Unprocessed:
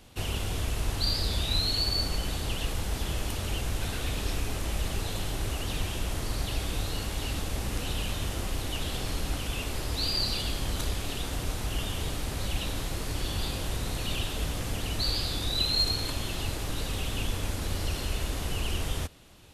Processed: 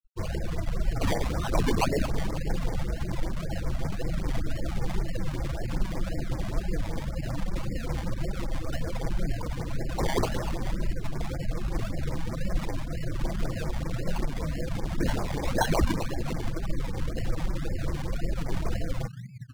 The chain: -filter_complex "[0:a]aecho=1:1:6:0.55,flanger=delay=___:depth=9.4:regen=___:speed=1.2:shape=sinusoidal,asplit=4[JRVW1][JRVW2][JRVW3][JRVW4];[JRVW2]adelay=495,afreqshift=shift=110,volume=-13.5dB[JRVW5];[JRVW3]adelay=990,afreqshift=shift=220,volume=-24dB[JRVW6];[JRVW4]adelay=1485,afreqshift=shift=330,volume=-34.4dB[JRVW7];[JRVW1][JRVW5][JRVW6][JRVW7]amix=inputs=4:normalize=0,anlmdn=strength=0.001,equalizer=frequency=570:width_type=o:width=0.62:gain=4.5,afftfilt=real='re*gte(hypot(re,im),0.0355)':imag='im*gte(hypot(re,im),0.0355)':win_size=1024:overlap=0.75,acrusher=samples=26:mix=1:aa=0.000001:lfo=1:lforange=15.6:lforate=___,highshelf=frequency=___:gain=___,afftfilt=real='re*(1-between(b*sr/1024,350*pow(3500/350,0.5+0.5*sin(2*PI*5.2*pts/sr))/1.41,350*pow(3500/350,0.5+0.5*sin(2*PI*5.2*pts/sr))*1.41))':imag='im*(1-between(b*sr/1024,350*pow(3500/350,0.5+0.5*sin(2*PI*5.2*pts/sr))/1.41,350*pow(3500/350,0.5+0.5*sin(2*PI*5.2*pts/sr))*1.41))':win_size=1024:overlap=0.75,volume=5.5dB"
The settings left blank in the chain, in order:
5, 13, 1.9, 11k, -9.5